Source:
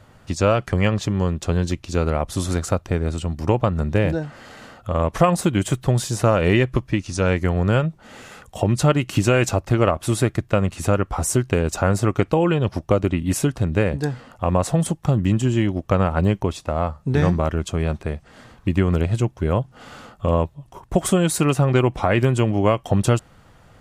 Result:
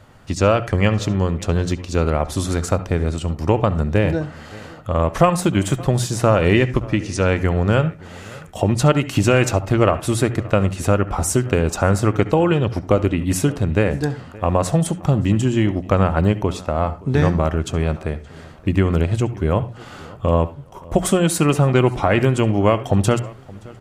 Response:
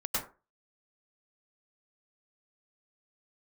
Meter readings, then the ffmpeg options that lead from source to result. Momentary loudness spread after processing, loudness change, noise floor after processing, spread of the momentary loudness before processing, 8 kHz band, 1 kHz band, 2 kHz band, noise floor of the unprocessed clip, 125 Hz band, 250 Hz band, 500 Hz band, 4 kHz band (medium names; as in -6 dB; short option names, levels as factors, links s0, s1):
8 LU, +2.0 dB, -40 dBFS, 7 LU, +1.5 dB, +2.5 dB, +2.5 dB, -52 dBFS, +1.5 dB, +2.0 dB, +2.5 dB, +2.0 dB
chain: -filter_complex "[0:a]bandreject=f=60:t=h:w=6,bandreject=f=120:t=h:w=6,bandreject=f=180:t=h:w=6,asplit=2[s0][s1];[s1]adelay=572,lowpass=f=3200:p=1,volume=0.0841,asplit=2[s2][s3];[s3]adelay=572,lowpass=f=3200:p=1,volume=0.32[s4];[s0][s2][s4]amix=inputs=3:normalize=0,asplit=2[s5][s6];[1:a]atrim=start_sample=2205,asetrate=66150,aresample=44100,lowpass=7000[s7];[s6][s7]afir=irnorm=-1:irlink=0,volume=0.15[s8];[s5][s8]amix=inputs=2:normalize=0,volume=1.19"